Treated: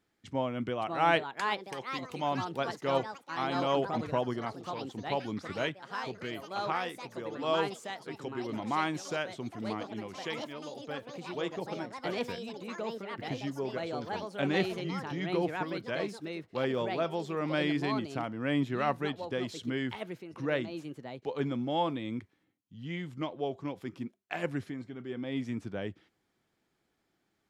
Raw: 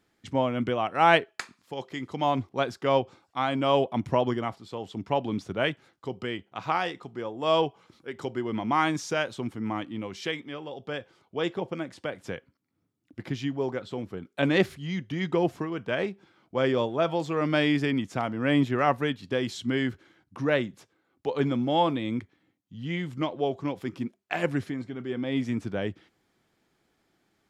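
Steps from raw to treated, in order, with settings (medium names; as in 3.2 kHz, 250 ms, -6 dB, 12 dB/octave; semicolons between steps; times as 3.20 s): ever faster or slower copies 619 ms, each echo +4 st, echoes 3, each echo -6 dB; trim -6.5 dB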